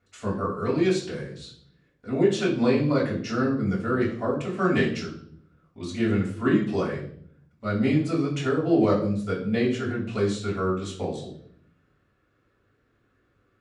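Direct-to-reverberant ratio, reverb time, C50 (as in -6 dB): -5.5 dB, 0.60 s, 7.0 dB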